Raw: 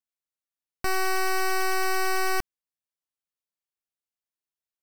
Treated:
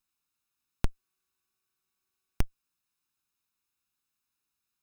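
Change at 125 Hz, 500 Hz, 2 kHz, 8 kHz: +6.5, -21.5, -27.0, -21.5 dB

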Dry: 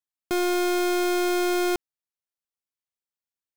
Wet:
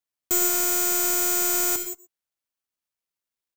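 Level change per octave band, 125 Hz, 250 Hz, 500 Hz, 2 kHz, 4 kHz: n/a, -8.5 dB, -8.5 dB, -2.5 dB, -0.5 dB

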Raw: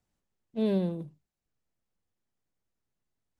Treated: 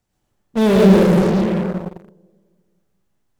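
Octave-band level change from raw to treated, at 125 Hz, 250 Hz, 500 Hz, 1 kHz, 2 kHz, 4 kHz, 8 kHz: +19.5 dB, +18.5 dB, +19.0 dB, +26.0 dB, +26.5 dB, +20.0 dB, n/a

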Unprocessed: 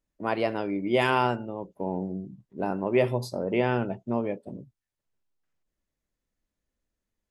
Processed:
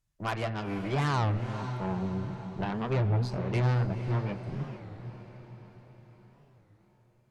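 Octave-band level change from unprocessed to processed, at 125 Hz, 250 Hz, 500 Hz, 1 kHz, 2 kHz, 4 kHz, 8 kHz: +7.0 dB, -4.0 dB, -8.5 dB, -5.0 dB, -6.0 dB, -4.5 dB, n/a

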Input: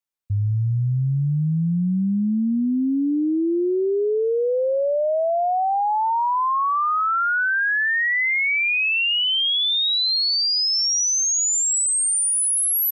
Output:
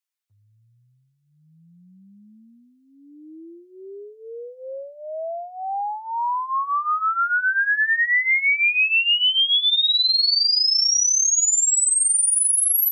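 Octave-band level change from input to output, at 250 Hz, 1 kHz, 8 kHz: under -25 dB, -3.5 dB, +1.5 dB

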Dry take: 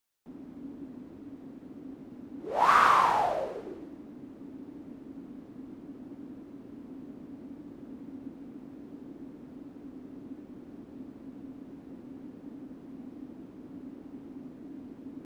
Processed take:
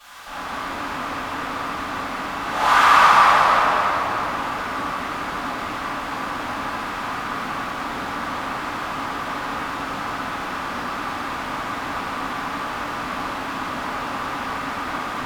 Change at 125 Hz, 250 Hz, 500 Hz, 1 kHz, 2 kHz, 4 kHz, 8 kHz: +13.5, +8.0, +9.5, +11.5, +15.5, +18.0, +16.0 dB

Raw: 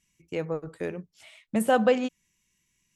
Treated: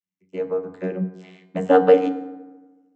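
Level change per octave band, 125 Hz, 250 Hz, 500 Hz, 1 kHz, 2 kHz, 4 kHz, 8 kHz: +6.0 dB, +4.5 dB, +8.5 dB, +5.5 dB, 0.0 dB, n/a, under -10 dB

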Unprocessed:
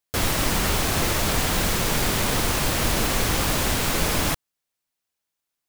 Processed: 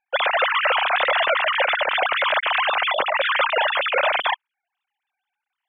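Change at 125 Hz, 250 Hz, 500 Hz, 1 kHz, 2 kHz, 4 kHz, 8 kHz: under -35 dB, under -20 dB, +5.0 dB, +7.5 dB, +8.0 dB, +2.5 dB, under -40 dB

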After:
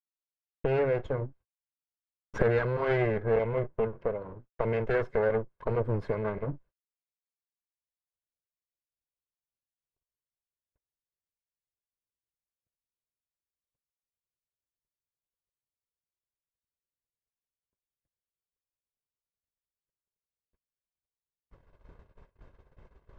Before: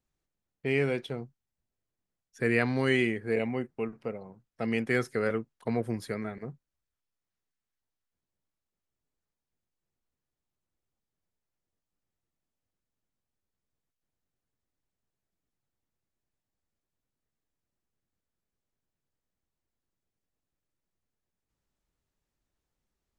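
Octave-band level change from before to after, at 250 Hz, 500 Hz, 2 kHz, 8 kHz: -5.0 dB, +3.5 dB, -4.5 dB, under -10 dB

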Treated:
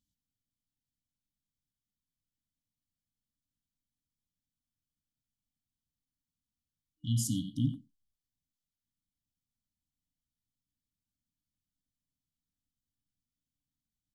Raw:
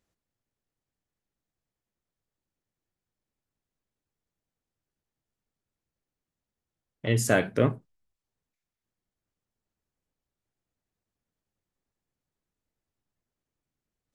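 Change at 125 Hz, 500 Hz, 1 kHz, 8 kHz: -4.0 dB, under -35 dB, under -40 dB, -4.0 dB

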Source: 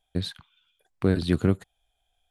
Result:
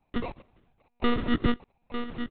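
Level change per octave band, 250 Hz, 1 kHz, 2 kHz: -2.0, +8.5, +3.5 dB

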